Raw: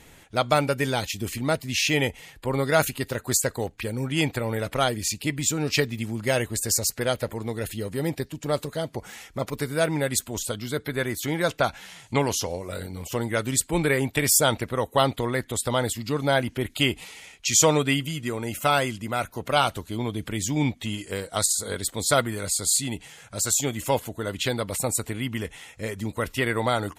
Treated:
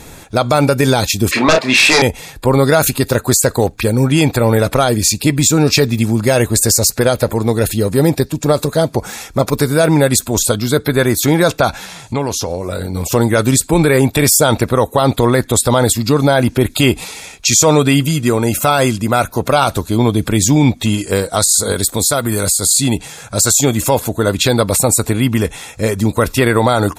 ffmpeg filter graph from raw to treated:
-filter_complex "[0:a]asettb=1/sr,asplit=3[a][b][c];[a]atrim=end=1.314[d];[b]atrim=start=1.31:end=2.02,asetpts=PTS-STARTPTS,afade=t=in:d=0.004:c=qsin,afade=t=out:st=0.706:d=0.004:c=qsin,highpass=630,lowpass=2.1k,aeval=exprs='0.211*sin(PI/2*3.98*val(0)/0.211)':c=same,asplit=2[e][f];[f]adelay=31,volume=-6.5dB[g];[e][g]amix=inputs=2:normalize=0,atrim=end_sample=31311[h];[c]atrim=start=2.016[i];[d][h]acrossfade=d=0.004:c1=hsin:c2=qsin[j];[j][i]acrossfade=d=0.004:c1=qsin:c2=hsin,asettb=1/sr,asplit=3[k][l][m];[k]atrim=end=11.854[n];[l]atrim=start=11.85:end=12.95,asetpts=PTS-STARTPTS,afade=t=in:d=0.004:c=qsin,afade=t=out:st=1.096:d=0.004:c=qsin,highshelf=f=5.3k:g=-5,acompressor=threshold=-34dB:ratio=2.5:attack=3.2:release=140:knee=1:detection=peak[o];[m]atrim=start=12.946[p];[n][o]acrossfade=d=0.004:c1=hsin:c2=qsin[q];[q][p]acrossfade=d=0.004:c1=qsin:c2=hsin,asettb=1/sr,asplit=3[r][s][t];[r]atrim=end=21.714[u];[s]atrim=start=21.71:end=22.69,asetpts=PTS-STARTPTS,afade=t=in:d=0.004:c=qsin,afade=t=out:st=0.976:d=0.004:c=qsin,equalizer=f=14k:w=0.45:g=8,acompressor=threshold=-27dB:ratio=5:attack=3.2:release=140:knee=1:detection=peak[v];[t]atrim=start=22.686[w];[u][v]acrossfade=d=0.004:c1=hsin:c2=qsin[x];[x][w]acrossfade=d=0.004:c1=qsin:c2=hsin,equalizer=f=2k:t=o:w=0.46:g=-7.5,bandreject=f=3k:w=5.5,alimiter=level_in=17dB:limit=-1dB:release=50:level=0:latency=1,volume=-1dB"

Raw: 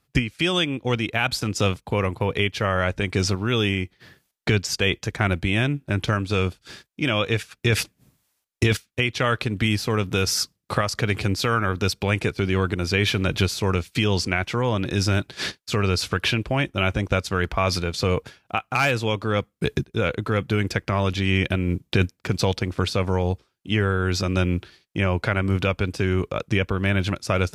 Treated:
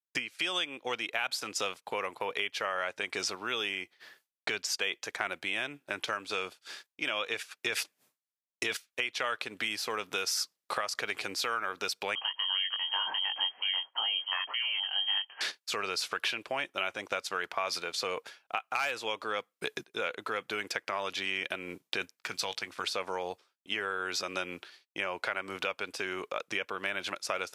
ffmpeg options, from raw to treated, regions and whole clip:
-filter_complex "[0:a]asettb=1/sr,asplit=3[a][b][c];[a]atrim=end=12.154[d];[b]atrim=start=12.15:end=15.41,asetpts=PTS-STARTPTS,afade=t=in:d=0.004:c=qsin,afade=t=out:st=3.256:d=0.004:c=qsin,flanger=delay=19.5:depth=2.6:speed=1.7,lowpass=f=2.8k:t=q:w=0.5098,lowpass=f=2.8k:t=q:w=0.6013,lowpass=f=2.8k:t=q:w=0.9,lowpass=f=2.8k:t=q:w=2.563,afreqshift=-3300[e];[c]atrim=start=15.406[f];[d][e]acrossfade=d=0.004:c1=hsin:c2=qsin[g];[g][f]acrossfade=d=0.004:c1=qsin:c2=hsin,asettb=1/sr,asplit=3[h][i][j];[h]atrim=end=22.154[k];[i]atrim=start=22.15:end=22.84,asetpts=PTS-STARTPTS,afade=t=in:d=0.004:c=qsin,afade=t=out:st=0.686:d=0.004:c=qsin,equalizer=f=470:w=0.76:g=-7.5,asplit=2[l][m];[m]adelay=19,volume=-14dB[n];[l][n]amix=inputs=2:normalize=0,atrim=end_sample=30429[o];[j]atrim=start=22.836[p];[k][o]acrossfade=d=0.004:c1=hsin:c2=qsin[q];[q][p]acrossfade=d=0.004:c1=qsin:c2=hsin,highpass=620,agate=range=-33dB:threshold=-54dB:ratio=3:detection=peak,acompressor=threshold=-28dB:ratio=2.5,volume=-2.5dB"

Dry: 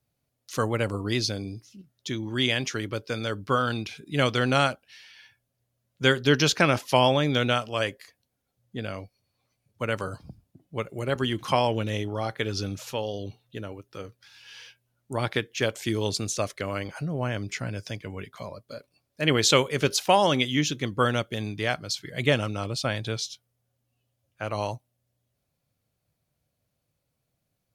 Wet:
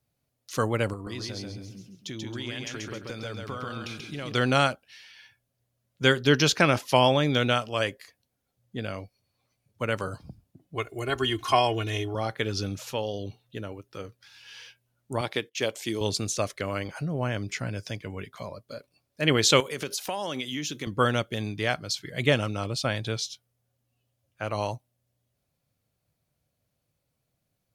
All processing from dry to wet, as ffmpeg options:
-filter_complex "[0:a]asettb=1/sr,asplit=3[a][b][c];[a]atrim=end=0.934[d];[b]atrim=start=0.93:end=4.32,asetpts=PTS-STARTPTS,afade=t=in:d=0.004:c=qsin,afade=t=out:st=3.386:d=0.004:c=qsin,acompressor=threshold=-33dB:ratio=5:attack=3.2:release=140:knee=1:detection=peak,aecho=1:1:135|270|405|540:0.708|0.241|0.0818|0.0278,atrim=end_sample=149499[e];[c]atrim=start=4.316[f];[d][e]acrossfade=d=0.004:c1=hsin:c2=qsin[g];[g][f]acrossfade=d=0.004:c1=qsin:c2=hsin,asettb=1/sr,asplit=3[h][i][j];[h]atrim=end=10.754[k];[i]atrim=start=10.75:end=12.15,asetpts=PTS-STARTPTS,afade=t=in:d=0.004:c=qsin,afade=t=out:st=1.396:d=0.004:c=qsin,equalizer=f=240:t=o:w=1.6:g=-5.5,aecho=1:1:2.8:0.85,atrim=end_sample=61740[l];[j]atrim=start=12.146[m];[k][l]acrossfade=d=0.004:c1=hsin:c2=qsin[n];[n][m]acrossfade=d=0.004:c1=qsin:c2=hsin,asettb=1/sr,asplit=3[o][p][q];[o]atrim=end=15.214[r];[p]atrim=start=15.21:end=16.01,asetpts=PTS-STARTPTS,afade=t=in:d=0.004:c=qsin,afade=t=out:st=0.796:d=0.004:c=qsin,agate=range=-19dB:threshold=-49dB:ratio=16:release=100:detection=peak,highpass=f=290:p=1,equalizer=f=1.5k:t=o:w=0.74:g=-6[s];[q]atrim=start=16.006[t];[r][s]acrossfade=d=0.004:c1=hsin:c2=qsin[u];[u][t]acrossfade=d=0.004:c1=qsin:c2=hsin,asettb=1/sr,asplit=3[v][w][x];[v]atrim=end=19.604[y];[w]atrim=start=19.6:end=20.87,asetpts=PTS-STARTPTS,afade=t=in:d=0.004:c=qsin,afade=t=out:st=1.266:d=0.004:c=qsin,highpass=160,highshelf=f=7.8k:g=8,acompressor=threshold=-29dB:ratio=4:attack=3.2:release=140:knee=1:detection=peak[z];[x]atrim=start=20.866[aa];[y][z]acrossfade=d=0.004:c1=hsin:c2=qsin[ab];[ab][aa]acrossfade=d=0.004:c1=qsin:c2=hsin"

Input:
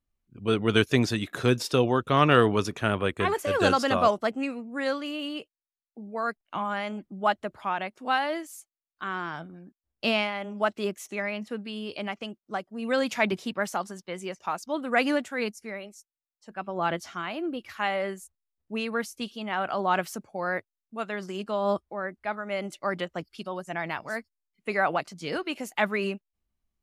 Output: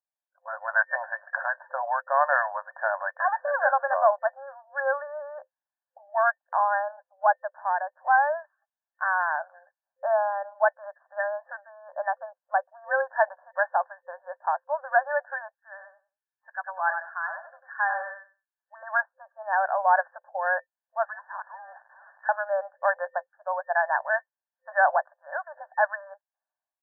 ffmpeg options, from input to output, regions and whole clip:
-filter_complex "[0:a]asettb=1/sr,asplit=3[a][b][c];[a]atrim=end=15.544[d];[b]atrim=start=15.54:end=18.83,asetpts=PTS-STARTPTS,afade=t=in:d=0.004:c=qsin,afade=t=out:st=3.286:d=0.004:c=qsin,highpass=1.4k,aecho=1:1:95|190|285:0.447|0.067|0.0101,atrim=end_sample=145089[e];[c]atrim=start=18.826[f];[d][e]acrossfade=d=0.004:c1=hsin:c2=qsin[g];[g][f]acrossfade=d=0.004:c1=qsin:c2=hsin,asettb=1/sr,asplit=3[h][i][j];[h]atrim=end=21.054[k];[i]atrim=start=21.05:end=22.29,asetpts=PTS-STARTPTS,afade=t=in:d=0.004:c=qsin,afade=t=out:st=1.236:d=0.004:c=qsin,aeval=exprs='val(0)+0.5*0.00794*sgn(val(0))':c=same,lowpass=f=3.4k:t=q:w=0.5098,lowpass=f=3.4k:t=q:w=0.6013,lowpass=f=3.4k:t=q:w=0.9,lowpass=f=3.4k:t=q:w=2.563,afreqshift=-4000[l];[j]atrim=start=22.286[m];[k][l]acrossfade=d=0.004:c1=hsin:c2=qsin[n];[n][m]acrossfade=d=0.004:c1=qsin:c2=hsin,afftfilt=real='re*between(b*sr/4096,520,1800)':imag='im*between(b*sr/4096,520,1800)':win_size=4096:overlap=0.75,aecho=1:1:1.2:0.65,dynaudnorm=f=160:g=7:m=16dB,volume=-8dB"

